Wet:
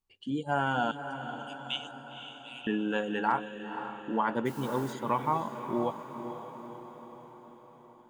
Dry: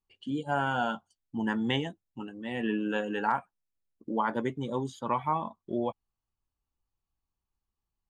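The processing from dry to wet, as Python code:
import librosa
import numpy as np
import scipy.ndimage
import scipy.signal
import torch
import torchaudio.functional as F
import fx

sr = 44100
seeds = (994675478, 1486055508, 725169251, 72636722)

y = fx.steep_highpass(x, sr, hz=2400.0, slope=96, at=(0.91, 2.67))
y = fx.dmg_noise_colour(y, sr, seeds[0], colour='white', level_db=-53.0, at=(4.45, 4.92), fade=0.02)
y = fx.echo_diffused(y, sr, ms=510, feedback_pct=58, wet_db=-9.5)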